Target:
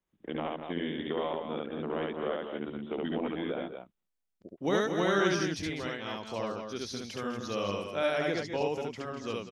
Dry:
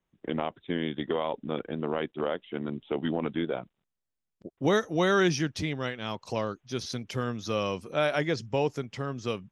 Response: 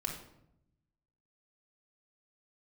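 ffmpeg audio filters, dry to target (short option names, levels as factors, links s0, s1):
-af "equalizer=f=130:t=o:w=0.35:g=-10.5,aecho=1:1:69.97|201.2|233.2:0.891|0.282|0.447,volume=0.531"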